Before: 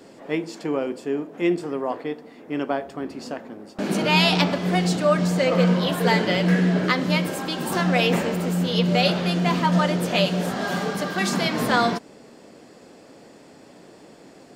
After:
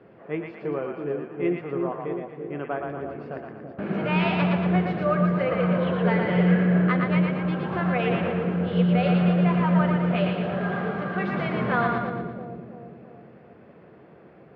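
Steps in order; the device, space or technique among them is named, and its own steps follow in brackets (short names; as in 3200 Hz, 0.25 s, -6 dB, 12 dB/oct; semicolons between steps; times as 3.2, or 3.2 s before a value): bass cabinet (speaker cabinet 66–2200 Hz, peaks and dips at 82 Hz +9 dB, 130 Hz +6 dB, 270 Hz -10 dB, 580 Hz -3 dB, 890 Hz -6 dB, 1900 Hz -4 dB); split-band echo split 620 Hz, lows 0.332 s, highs 0.116 s, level -3.5 dB; gain -2 dB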